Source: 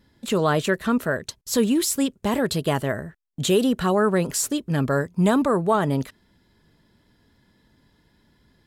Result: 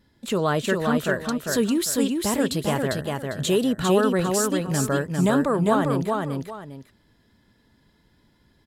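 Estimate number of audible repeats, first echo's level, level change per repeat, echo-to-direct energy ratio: 2, -3.5 dB, -11.0 dB, -3.0 dB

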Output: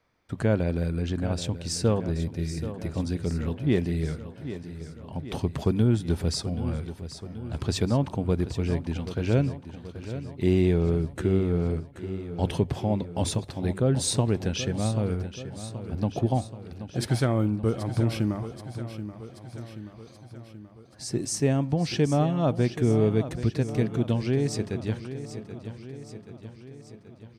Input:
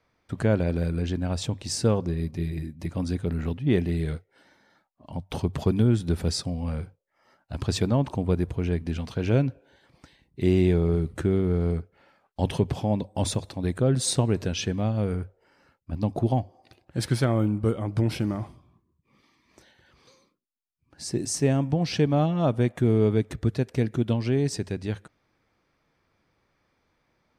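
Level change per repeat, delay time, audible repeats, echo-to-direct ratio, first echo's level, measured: -4.5 dB, 0.78 s, 6, -10.0 dB, -12.0 dB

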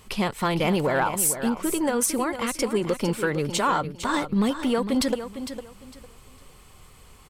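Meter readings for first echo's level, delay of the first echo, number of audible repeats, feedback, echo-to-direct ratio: -10.5 dB, 0.455 s, 2, 23%, -10.5 dB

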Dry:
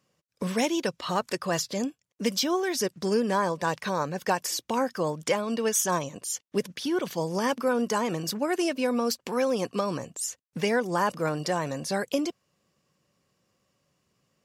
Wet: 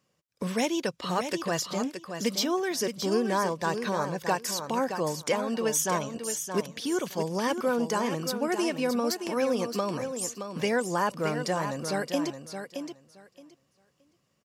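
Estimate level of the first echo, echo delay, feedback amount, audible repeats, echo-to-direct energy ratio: -8.0 dB, 0.621 s, 17%, 2, -8.0 dB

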